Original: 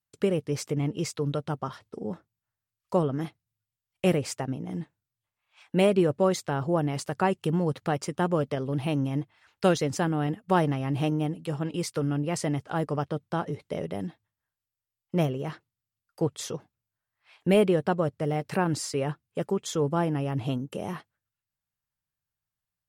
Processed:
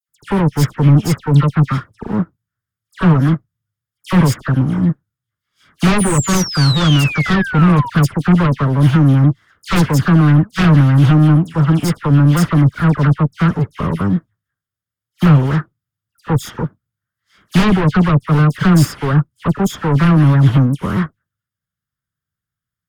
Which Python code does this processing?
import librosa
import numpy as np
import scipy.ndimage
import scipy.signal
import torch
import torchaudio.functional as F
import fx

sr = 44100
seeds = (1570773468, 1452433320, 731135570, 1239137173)

p1 = fx.lower_of_two(x, sr, delay_ms=0.58)
p2 = fx.highpass(p1, sr, hz=140.0, slope=6)
p3 = fx.peak_eq(p2, sr, hz=1300.0, db=8.5, octaves=0.82)
p4 = fx.level_steps(p3, sr, step_db=21)
p5 = p3 + (p4 * librosa.db_to_amplitude(-2.0))
p6 = 10.0 ** (-18.0 / 20.0) * np.tanh(p5 / 10.0 ** (-18.0 / 20.0))
p7 = fx.dispersion(p6, sr, late='lows', ms=89.0, hz=2200.0)
p8 = fx.spec_paint(p7, sr, seeds[0], shape='fall', start_s=5.98, length_s=1.92, low_hz=920.0, high_hz=10000.0, level_db=-31.0)
p9 = fx.fold_sine(p8, sr, drive_db=11, ceiling_db=-10.0)
p10 = fx.bass_treble(p9, sr, bass_db=12, treble_db=-1)
p11 = fx.upward_expand(p10, sr, threshold_db=-28.0, expansion=1.5)
y = p11 * librosa.db_to_amplitude(-1.5)